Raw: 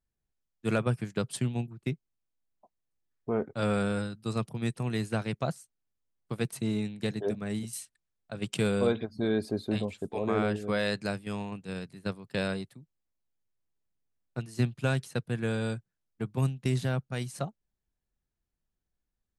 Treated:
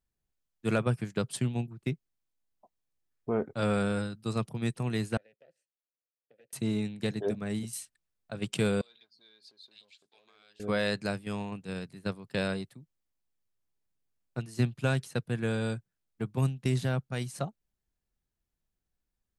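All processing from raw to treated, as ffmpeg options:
-filter_complex "[0:a]asettb=1/sr,asplit=3[a][b][c];[a]atrim=end=5.174[d];[b]atrim=start=5.17:end=6.53,asetpts=PTS-STARTPTS,afade=t=in:d=0.004:c=qsin,afade=t=out:st=1.356:d=0.004:c=qsin,aeval=exprs='(tanh(31.6*val(0)+0.55)-tanh(0.55))/31.6':c=same,acompressor=threshold=-44dB:ratio=6:attack=3.2:release=140:knee=1:detection=peak,asplit=3[e][f][g];[e]bandpass=f=530:t=q:w=8,volume=0dB[h];[f]bandpass=f=1.84k:t=q:w=8,volume=-6dB[i];[g]bandpass=f=2.48k:t=q:w=8,volume=-9dB[j];[h][i][j]amix=inputs=3:normalize=0[k];[c]atrim=start=6.526[l];[d][k]acrossfade=d=0.004:c1=hsin:c2=qsin[m];[m][l]acrossfade=d=0.004:c1=qsin:c2=hsin,asettb=1/sr,asplit=3[n][o][p];[n]atrim=end=8.814[q];[o]atrim=start=8.81:end=10.6,asetpts=PTS-STARTPTS,afade=t=in:d=0.004:c=qsin,afade=t=out:st=1.786:d=0.004:c=qsin,aeval=exprs='if(lt(val(0),0),0.708*val(0),val(0))':c=same,acompressor=threshold=-36dB:ratio=5:attack=3.2:release=140:knee=1:detection=peak,bandpass=f=4.2k:t=q:w=2.6[r];[p]atrim=start=10.596[s];[q][r]acrossfade=d=0.004:c1=hsin:c2=qsin[t];[t][s]acrossfade=d=0.004:c1=qsin:c2=hsin"

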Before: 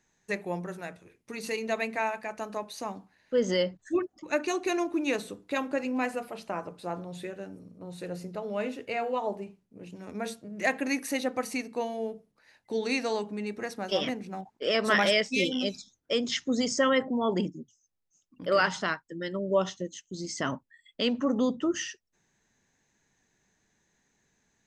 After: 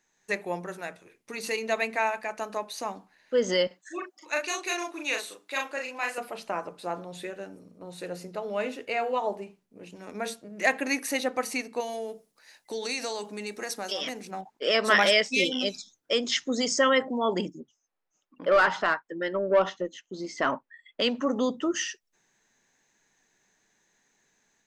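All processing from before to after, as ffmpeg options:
-filter_complex "[0:a]asettb=1/sr,asplit=3[a][b][c];[a]atrim=end=3.674[d];[b]atrim=start=3.67:end=6.18,asetpts=PTS-STARTPTS,afade=t=in:d=0.004:c=qsin,afade=t=out:st=2.506:d=0.004:c=qsin,highpass=f=1.3k:p=1,asplit=2[e][f];[f]adelay=37,volume=-2.5dB[g];[e][g]amix=inputs=2:normalize=0,atrim=end_sample=110691[h];[c]atrim=start=6.176[i];[d][h]acrossfade=d=0.004:c1=hsin:c2=qsin[j];[j][i]acrossfade=d=0.004:c1=qsin:c2=hsin,asettb=1/sr,asplit=3[k][l][m];[k]atrim=end=11.804[n];[l]atrim=start=11.8:end=14.31,asetpts=PTS-STARTPTS,afade=t=in:d=0.004:c=qsin,afade=t=out:st=2.506:d=0.004:c=qsin,bass=f=250:g=-3,treble=f=4k:g=10,acompressor=threshold=-31dB:ratio=4:attack=3.2:release=140:knee=1:detection=peak[o];[m]atrim=start=14.306[p];[n][o]acrossfade=d=0.004:c1=hsin:c2=qsin[q];[q][p]acrossfade=d=0.004:c1=qsin:c2=hsin,asettb=1/sr,asplit=3[r][s][t];[r]atrim=end=17.604[u];[s]atrim=start=17.6:end=21.02,asetpts=PTS-STARTPTS,afade=t=in:d=0.004:c=qsin,afade=t=out:st=3.416:d=0.004:c=qsin,highshelf=f=3.6k:g=-12,asplit=2[v][w];[w]highpass=f=720:p=1,volume=15dB,asoftclip=type=tanh:threshold=-14dB[x];[v][x]amix=inputs=2:normalize=0,lowpass=f=1.5k:p=1,volume=-6dB[y];[t]atrim=start=21.016[z];[u][y]acrossfade=d=0.004:c1=hsin:c2=qsin[aa];[aa][z]acrossfade=d=0.004:c1=qsin:c2=hsin,equalizer=f=64:w=0.34:g=-14,dynaudnorm=f=120:g=3:m=4dB"

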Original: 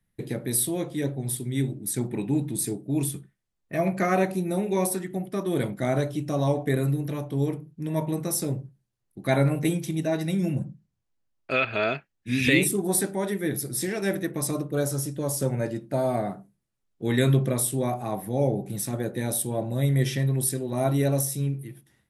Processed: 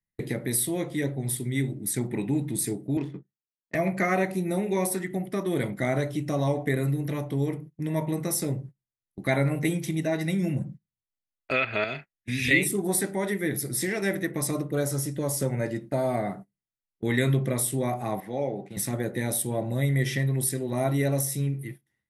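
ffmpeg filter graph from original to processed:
-filter_complex "[0:a]asettb=1/sr,asplit=3[a][b][c];[a]atrim=end=2.974[d];[b]atrim=start=2.97:end=3.75,asetpts=PTS-STARTPTS,afade=t=in:d=0.004:c=qsin,afade=t=out:st=0.776:d=0.004:c=qsin,acrossover=split=150 5600:gain=0.0794 1 0.251[e][f][g];[e][f][g]amix=inputs=3:normalize=0,bandreject=f=50:t=h:w=6,bandreject=f=100:t=h:w=6,adynamicsmooth=sensitivity=7:basefreq=700[h];[c]atrim=start=3.746[i];[d][h]acrossfade=d=0.004:c1=hsin:c2=qsin[j];[j][i]acrossfade=d=0.004:c1=qsin:c2=hsin,asettb=1/sr,asplit=3[k][l][m];[k]atrim=end=11.844[n];[l]atrim=start=11.84:end=12.51,asetpts=PTS-STARTPTS,afade=t=in:d=0.004:c=qsin,afade=t=out:st=0.666:d=0.004:c=qsin,acrossover=split=130|3000[o][p][q];[p]acompressor=threshold=-36dB:ratio=2:attack=3.2:release=140:knee=2.83:detection=peak[r];[o][r][q]amix=inputs=3:normalize=0,asplit=2[s][t];[t]adelay=40,volume=-12dB[u];[s][u]amix=inputs=2:normalize=0,atrim=end_sample=29547[v];[m]atrim=start=12.506[w];[n][v]acrossfade=d=0.004:c1=hsin:c2=qsin[x];[x][w]acrossfade=d=0.004:c1=qsin:c2=hsin,asettb=1/sr,asplit=3[y][z][aa];[y]atrim=end=18.204[ab];[z]atrim=start=18.2:end=18.77,asetpts=PTS-STARTPTS,afade=t=in:d=0.004:c=qsin,afade=t=out:st=0.566:d=0.004:c=qsin,highpass=130,lowpass=4.4k,lowshelf=f=400:g=-9.5[ac];[aa]atrim=start=18.766[ad];[ab][ac]acrossfade=d=0.004:c1=hsin:c2=qsin[ae];[ae][ad]acrossfade=d=0.004:c1=qsin:c2=hsin,agate=range=-20dB:threshold=-41dB:ratio=16:detection=peak,equalizer=f=2k:t=o:w=0.24:g=9.5,acompressor=threshold=-33dB:ratio=1.5,volume=3dB"

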